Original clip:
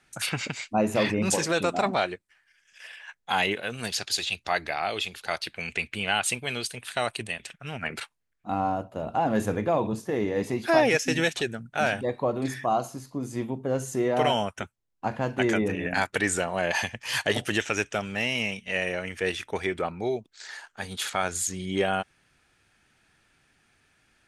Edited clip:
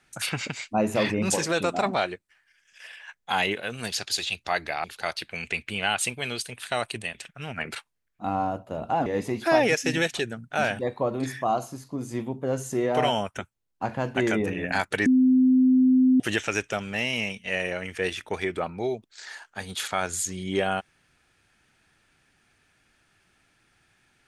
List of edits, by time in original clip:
0:04.84–0:05.09: remove
0:09.31–0:10.28: remove
0:16.28–0:17.42: beep over 257 Hz −15 dBFS

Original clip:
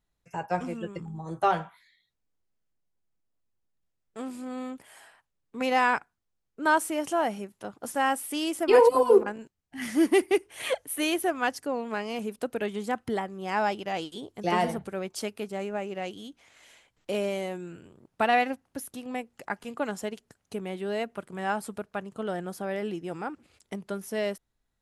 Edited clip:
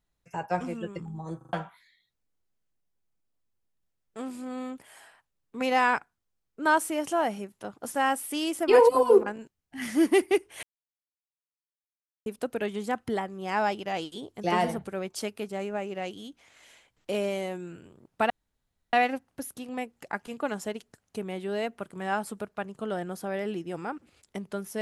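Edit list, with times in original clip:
0:01.37: stutter in place 0.04 s, 4 plays
0:10.63–0:12.26: silence
0:18.30: splice in room tone 0.63 s

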